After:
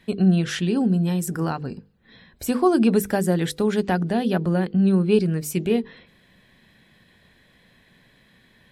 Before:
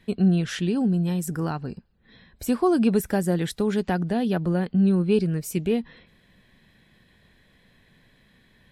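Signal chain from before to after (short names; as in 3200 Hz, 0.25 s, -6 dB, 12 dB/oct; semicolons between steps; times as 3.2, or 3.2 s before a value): low shelf 65 Hz -8.5 dB; notches 50/100/150/200/250/300/350/400/450/500 Hz; gain +3.5 dB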